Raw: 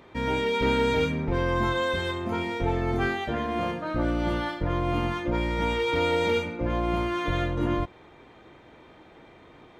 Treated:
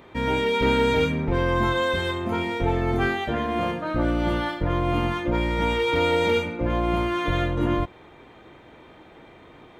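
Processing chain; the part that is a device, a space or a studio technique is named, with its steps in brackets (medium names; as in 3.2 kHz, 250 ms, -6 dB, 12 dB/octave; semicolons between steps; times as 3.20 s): exciter from parts (in parallel at -8.5 dB: high-pass 3.3 kHz 24 dB/octave + saturation -39.5 dBFS, distortion -13 dB + high-pass 4.3 kHz 12 dB/octave); on the sum: trim +3 dB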